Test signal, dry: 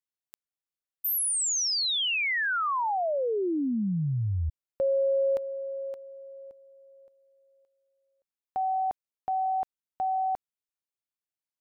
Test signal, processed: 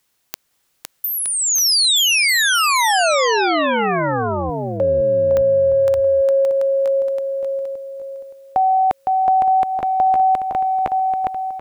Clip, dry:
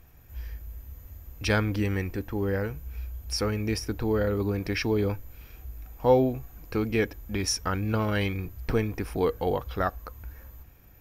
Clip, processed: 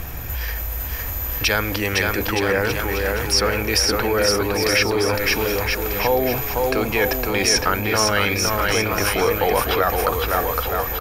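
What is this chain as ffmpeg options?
ffmpeg -i in.wav -filter_complex "[0:a]areverse,acompressor=threshold=-37dB:ratio=12:attack=2.4:release=80:knee=6:detection=peak,areverse,aecho=1:1:510|918|1244|1506|1714:0.631|0.398|0.251|0.158|0.1,apsyclip=29.5dB,acrossover=split=480|5500[link_01][link_02][link_03];[link_01]acompressor=threshold=-26dB:ratio=4[link_04];[link_02]acompressor=threshold=-13dB:ratio=4[link_05];[link_03]acompressor=threshold=-22dB:ratio=4[link_06];[link_04][link_05][link_06]amix=inputs=3:normalize=0,volume=-2.5dB" out.wav

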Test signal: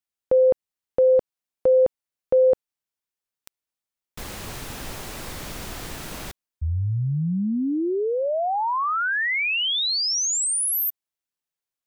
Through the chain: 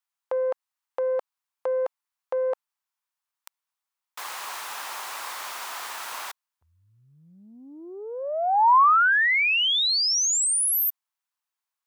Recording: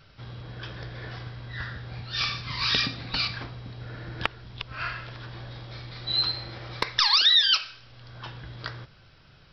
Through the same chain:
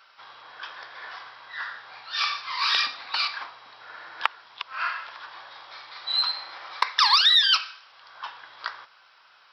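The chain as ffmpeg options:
ffmpeg -i in.wav -af "aeval=exprs='0.473*(cos(1*acos(clip(val(0)/0.473,-1,1)))-cos(1*PI/2))+0.00531*(cos(5*acos(clip(val(0)/0.473,-1,1)))-cos(5*PI/2))+0.00299*(cos(6*acos(clip(val(0)/0.473,-1,1)))-cos(6*PI/2))':channel_layout=same,highpass=frequency=990:width_type=q:width=2.4" out.wav

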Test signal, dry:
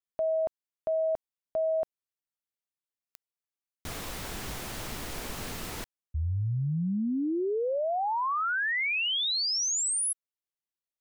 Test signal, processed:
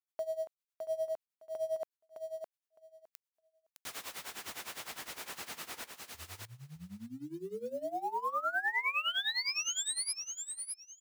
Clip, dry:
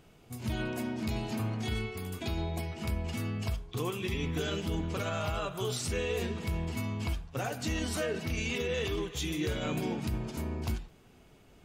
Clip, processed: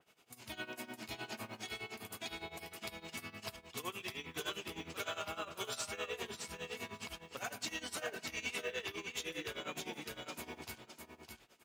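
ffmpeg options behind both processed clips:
ffmpeg -i in.wav -af "highpass=frequency=1200:poles=1,acrusher=bits=6:mode=log:mix=0:aa=0.000001,tremolo=f=9.8:d=0.86,aecho=1:1:611|1222|1833:0.562|0.0844|0.0127,adynamicequalizer=threshold=0.00355:dfrequency=2900:dqfactor=0.7:tfrequency=2900:tqfactor=0.7:attack=5:release=100:ratio=0.375:range=3:mode=cutabove:tftype=highshelf,volume=1dB" out.wav

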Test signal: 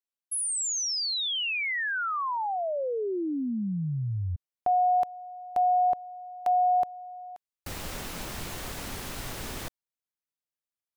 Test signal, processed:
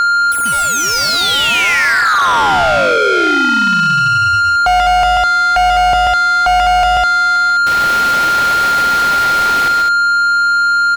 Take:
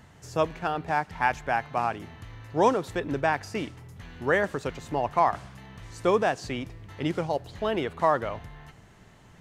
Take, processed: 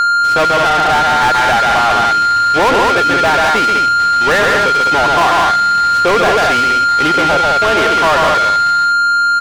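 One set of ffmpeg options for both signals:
ffmpeg -i in.wav -filter_complex "[0:a]agate=range=-23dB:threshold=-46dB:ratio=16:release=454:detection=peak,equalizer=frequency=8200:width=3.5:gain=-10,aeval=exprs='val(0)+0.00355*(sin(2*PI*60*n/s)+sin(2*PI*2*60*n/s)/2+sin(2*PI*3*60*n/s)/3+sin(2*PI*4*60*n/s)/4+sin(2*PI*5*60*n/s)/5)':channel_layout=same,aecho=1:1:137|204.1:0.562|0.447,aeval=exprs='val(0)+0.0355*sin(2*PI*1400*n/s)':channel_layout=same,asplit=2[link_01][link_02];[link_02]highpass=frequency=720:poles=1,volume=32dB,asoftclip=type=tanh:threshold=-8.5dB[link_03];[link_01][link_03]amix=inputs=2:normalize=0,lowpass=frequency=3500:poles=1,volume=-6dB,volume=4dB" out.wav

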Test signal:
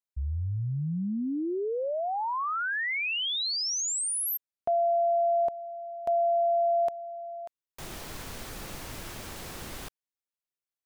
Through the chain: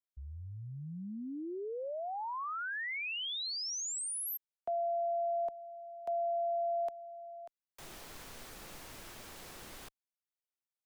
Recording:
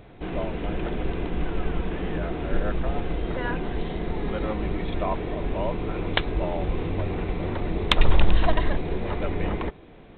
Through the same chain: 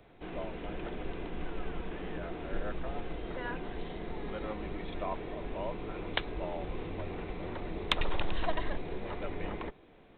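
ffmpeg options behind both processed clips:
ffmpeg -i in.wav -filter_complex "[0:a]equalizer=frequency=70:width=0.34:gain=-6.5,acrossover=split=180|350|1300[link_01][link_02][link_03][link_04];[link_01]asoftclip=type=hard:threshold=-17.5dB[link_05];[link_05][link_02][link_03][link_04]amix=inputs=4:normalize=0,volume=-8dB" out.wav

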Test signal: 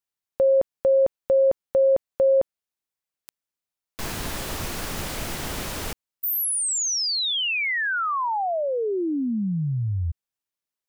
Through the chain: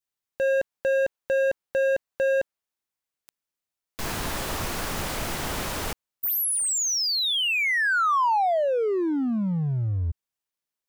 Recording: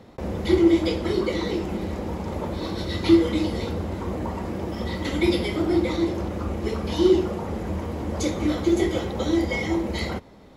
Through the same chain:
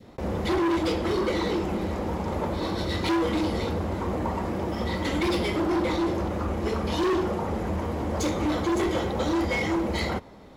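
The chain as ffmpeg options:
ffmpeg -i in.wav -af "volume=23dB,asoftclip=hard,volume=-23dB,adynamicequalizer=threshold=0.0126:dfrequency=1000:dqfactor=0.73:tfrequency=1000:tqfactor=0.73:attack=5:release=100:ratio=0.375:range=2:mode=boostabove:tftype=bell" out.wav

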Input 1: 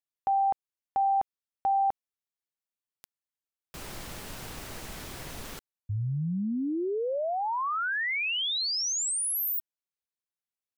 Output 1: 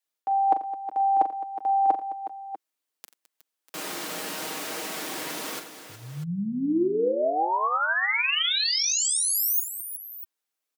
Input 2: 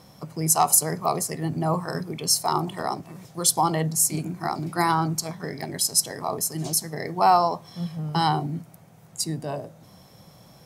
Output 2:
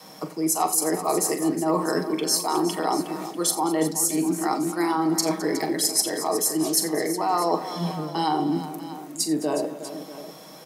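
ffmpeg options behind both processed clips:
ffmpeg -i in.wav -af "highpass=frequency=230:width=0.5412,highpass=frequency=230:width=1.3066,adynamicequalizer=threshold=0.00631:dfrequency=330:dqfactor=1.5:tfrequency=330:tqfactor=1.5:attack=5:release=100:ratio=0.375:range=4:mode=boostabove:tftype=bell,aecho=1:1:6.4:0.48,alimiter=limit=-10dB:level=0:latency=1:release=341,areverse,acompressor=threshold=-33dB:ratio=6:attack=76:release=233:knee=6:detection=peak,areverse,aecho=1:1:41|87|212|365|644:0.316|0.15|0.15|0.237|0.178,volume=7.5dB" out.wav

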